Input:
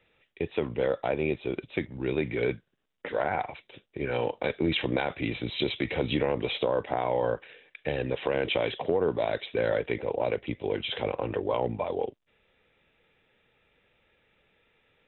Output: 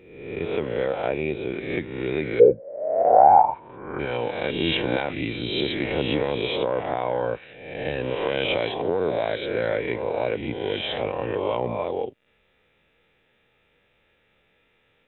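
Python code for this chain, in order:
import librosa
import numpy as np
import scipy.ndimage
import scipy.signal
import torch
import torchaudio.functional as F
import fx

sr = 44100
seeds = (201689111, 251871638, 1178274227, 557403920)

y = fx.spec_swells(x, sr, rise_s=0.94)
y = fx.lowpass_res(y, sr, hz=fx.line((2.39, 480.0), (3.98, 1200.0)), q=13.0, at=(2.39, 3.98), fade=0.02)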